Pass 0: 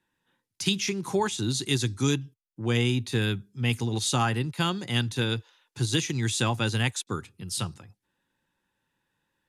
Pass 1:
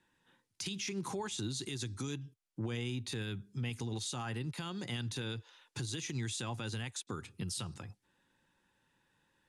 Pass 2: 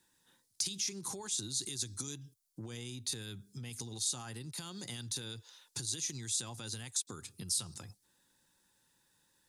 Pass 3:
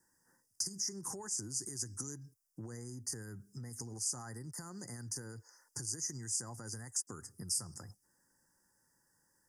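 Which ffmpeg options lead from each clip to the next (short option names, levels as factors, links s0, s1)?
-af "lowpass=f=11000:w=0.5412,lowpass=f=11000:w=1.3066,acompressor=threshold=0.0158:ratio=4,alimiter=level_in=2.66:limit=0.0631:level=0:latency=1:release=94,volume=0.376,volume=1.41"
-af "acompressor=threshold=0.00891:ratio=2.5,aexciter=amount=5.6:drive=2.6:freq=3900,volume=0.75"
-af "asuperstop=centerf=3100:order=20:qfactor=1.1,volume=0.891"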